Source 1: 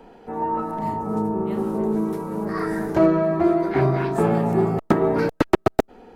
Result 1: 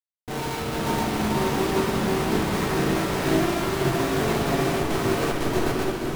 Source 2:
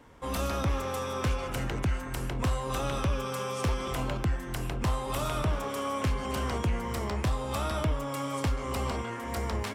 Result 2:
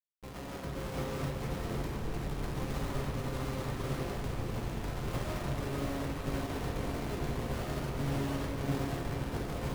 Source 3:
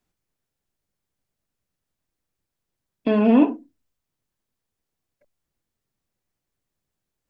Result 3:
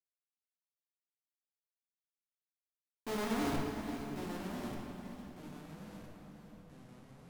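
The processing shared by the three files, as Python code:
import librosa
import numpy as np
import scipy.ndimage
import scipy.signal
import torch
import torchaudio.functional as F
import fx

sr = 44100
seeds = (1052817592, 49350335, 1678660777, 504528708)

p1 = fx.tracing_dist(x, sr, depth_ms=0.22)
p2 = scipy.signal.sosfilt(scipy.signal.butter(2, 56.0, 'highpass', fs=sr, output='sos'), p1)
p3 = np.clip(p2, -10.0 ** (-21.5 / 20.0), 10.0 ** (-21.5 / 20.0))
p4 = p2 + (p3 * 10.0 ** (-8.5 / 20.0))
p5 = fx.peak_eq(p4, sr, hz=84.0, db=-10.0, octaves=0.61)
p6 = fx.doubler(p5, sr, ms=32.0, db=-12.5)
p7 = fx.small_body(p6, sr, hz=(390.0, 730.0, 1900.0, 3200.0), ring_ms=70, db=9)
p8 = fx.schmitt(p7, sr, flips_db=-27.5)
p9 = fx.comb_fb(p8, sr, f0_hz=140.0, decay_s=0.7, harmonics='odd', damping=0.0, mix_pct=70)
p10 = fx.room_shoebox(p9, sr, seeds[0], volume_m3=120.0, walls='hard', distance_m=0.42)
p11 = fx.echo_pitch(p10, sr, ms=513, semitones=-3, count=3, db_per_echo=-6.0)
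p12 = fx.echo_diffused(p11, sr, ms=518, feedback_pct=42, wet_db=-7.5)
y = fx.upward_expand(p12, sr, threshold_db=-44.0, expansion=1.5)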